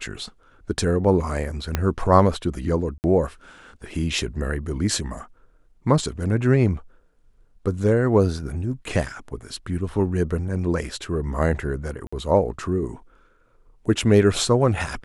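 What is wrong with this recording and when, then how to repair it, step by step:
1.75 s: pop -7 dBFS
2.98–3.04 s: dropout 59 ms
12.07–12.12 s: dropout 55 ms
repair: de-click; interpolate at 2.98 s, 59 ms; interpolate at 12.07 s, 55 ms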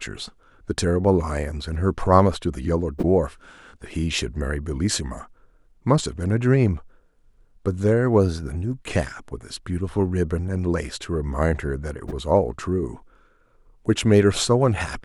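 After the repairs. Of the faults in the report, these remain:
1.75 s: pop

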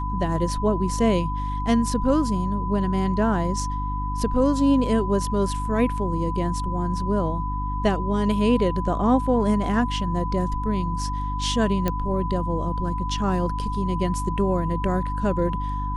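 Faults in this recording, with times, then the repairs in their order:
hum 50 Hz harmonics 6 -28 dBFS
whine 1 kHz -29 dBFS
11.88 s: pop -10 dBFS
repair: de-click; band-stop 1 kHz, Q 30; de-hum 50 Hz, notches 6

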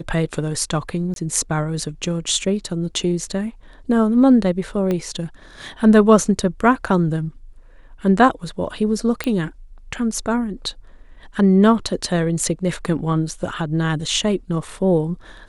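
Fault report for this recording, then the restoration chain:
1.14–1.16 s: dropout 22 ms
4.91 s: pop -11 dBFS
9.24 s: pop -9 dBFS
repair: de-click; interpolate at 1.14 s, 22 ms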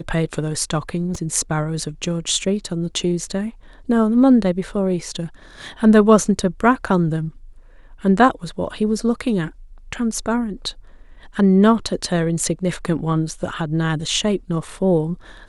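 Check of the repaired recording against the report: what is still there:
4.91 s: pop

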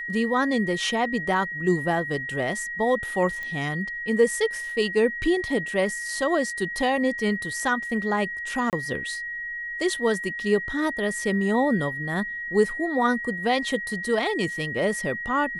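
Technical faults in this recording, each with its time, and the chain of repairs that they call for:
whine 1.9 kHz -30 dBFS
3.43 s: pop -21 dBFS
8.70–8.73 s: dropout 28 ms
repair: de-click; band-stop 1.9 kHz, Q 30; interpolate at 8.70 s, 28 ms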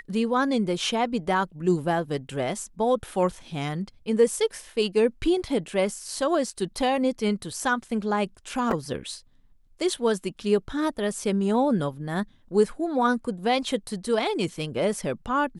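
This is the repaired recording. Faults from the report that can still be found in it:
nothing left

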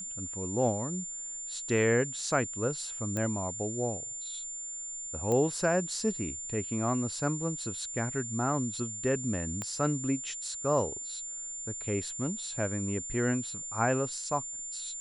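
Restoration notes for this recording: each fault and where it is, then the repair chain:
whine 7.2 kHz -37 dBFS
3.17 s: pop -20 dBFS
5.32 s: pop -19 dBFS
9.62 s: pop -21 dBFS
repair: de-click; band-stop 7.2 kHz, Q 30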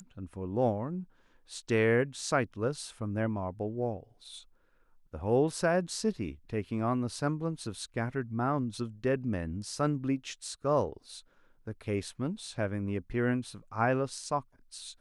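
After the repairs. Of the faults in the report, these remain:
9.62 s: pop

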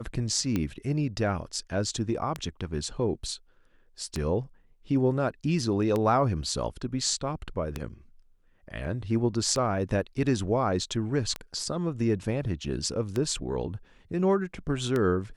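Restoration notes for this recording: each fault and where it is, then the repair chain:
tick 33 1/3 rpm -15 dBFS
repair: de-click

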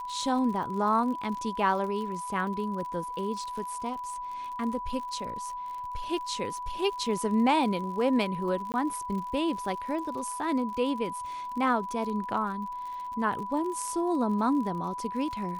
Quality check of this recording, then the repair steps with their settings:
crackle 56 per s -37 dBFS
whine 990 Hz -34 dBFS
8.72–8.74 s: dropout 19 ms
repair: de-click; band-stop 990 Hz, Q 30; interpolate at 8.72 s, 19 ms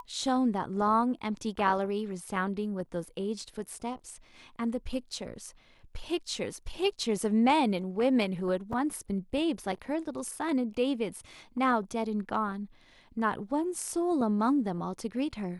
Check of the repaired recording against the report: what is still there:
nothing left

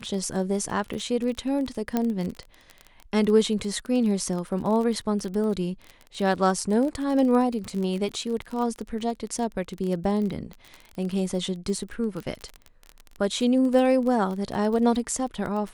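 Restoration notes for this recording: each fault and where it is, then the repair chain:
crackle 24 per s -29 dBFS
1.97 s: pop -11 dBFS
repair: de-click

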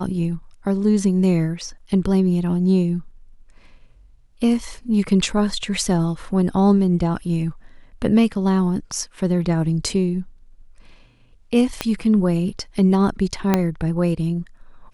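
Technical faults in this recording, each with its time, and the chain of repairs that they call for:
11.81 s: pop -7 dBFS
13.54 s: pop -3 dBFS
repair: de-click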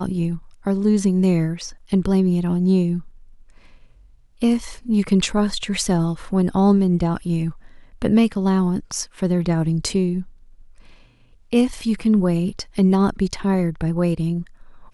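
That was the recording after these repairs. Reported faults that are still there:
11.81 s: pop
13.54 s: pop

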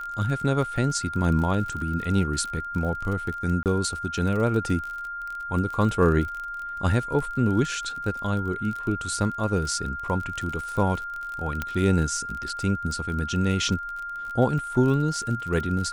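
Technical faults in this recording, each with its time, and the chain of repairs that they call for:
crackle 36 per s -31 dBFS
whine 1.4 kHz -31 dBFS
3.63–3.66 s: dropout 28 ms
11.62 s: pop -13 dBFS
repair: de-click; band-stop 1.4 kHz, Q 30; interpolate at 3.63 s, 28 ms

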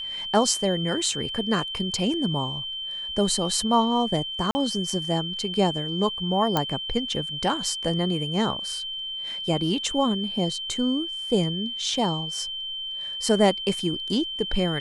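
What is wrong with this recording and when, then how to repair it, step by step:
whine 3.1 kHz -30 dBFS
4.51–4.55 s: dropout 40 ms
6.57 s: pop -8 dBFS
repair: de-click; band-stop 3.1 kHz, Q 30; interpolate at 4.51 s, 40 ms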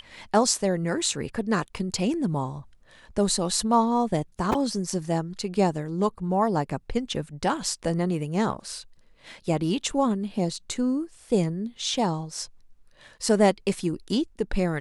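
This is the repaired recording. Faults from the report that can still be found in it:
nothing left

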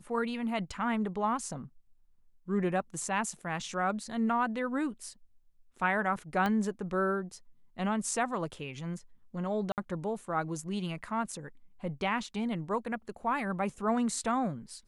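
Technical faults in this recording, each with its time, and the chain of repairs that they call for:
6.46 s: pop -18 dBFS
9.72–9.78 s: dropout 58 ms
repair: de-click; interpolate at 9.72 s, 58 ms

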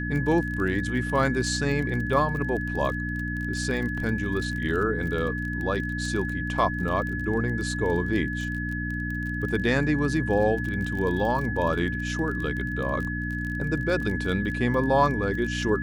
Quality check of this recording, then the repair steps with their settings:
crackle 28 per s -31 dBFS
hum 60 Hz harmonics 5 -31 dBFS
whine 1.7 kHz -32 dBFS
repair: de-click; band-stop 1.7 kHz, Q 30; de-hum 60 Hz, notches 5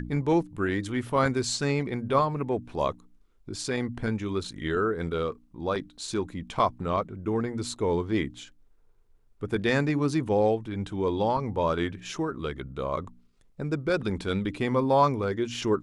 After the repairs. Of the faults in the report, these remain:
nothing left

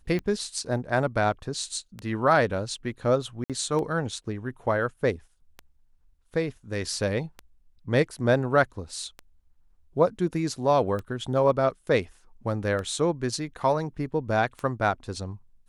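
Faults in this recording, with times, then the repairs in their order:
tick 33 1/3 rpm -21 dBFS
3.44–3.50 s: dropout 57 ms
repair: de-click; interpolate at 3.44 s, 57 ms

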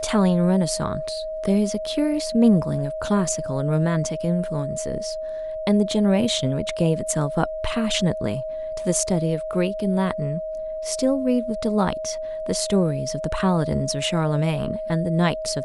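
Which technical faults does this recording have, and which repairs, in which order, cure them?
whine 630 Hz -27 dBFS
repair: band-stop 630 Hz, Q 30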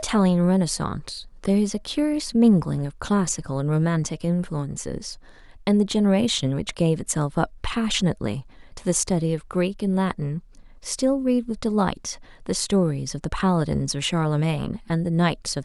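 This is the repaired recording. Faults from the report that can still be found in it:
nothing left

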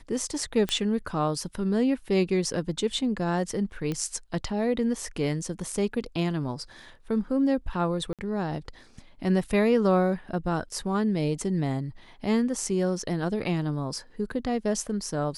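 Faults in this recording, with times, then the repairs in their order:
0.69 s: pop -13 dBFS
3.92 s: pop -18 dBFS
8.13–8.19 s: dropout 57 ms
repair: de-click; interpolate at 8.13 s, 57 ms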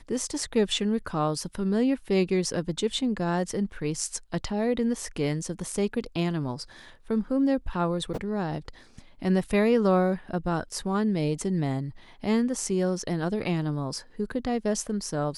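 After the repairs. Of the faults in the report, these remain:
3.92 s: pop

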